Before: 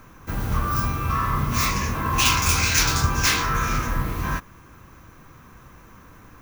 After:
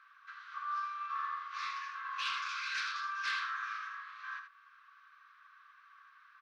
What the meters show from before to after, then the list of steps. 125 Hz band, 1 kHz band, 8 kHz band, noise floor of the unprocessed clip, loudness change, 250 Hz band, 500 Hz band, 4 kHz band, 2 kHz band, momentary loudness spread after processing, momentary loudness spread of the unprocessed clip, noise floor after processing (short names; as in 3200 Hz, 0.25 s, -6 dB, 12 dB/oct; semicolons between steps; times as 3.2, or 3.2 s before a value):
under -40 dB, -12.5 dB, -30.5 dB, -48 dBFS, -16.0 dB, under -40 dB, under -40 dB, -16.5 dB, -11.5 dB, 11 LU, 10 LU, -62 dBFS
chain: LPF 4600 Hz 24 dB/oct; tilt -4 dB/oct; in parallel at +1 dB: compressor 10:1, threshold -20 dBFS, peak gain reduction 19.5 dB; on the sum: rippled Chebyshev high-pass 1100 Hz, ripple 6 dB; soft clip -17 dBFS, distortion -27 dB; on a send: echo 79 ms -8 dB; on the sum: gain -8 dB; SBC 128 kbps 48000 Hz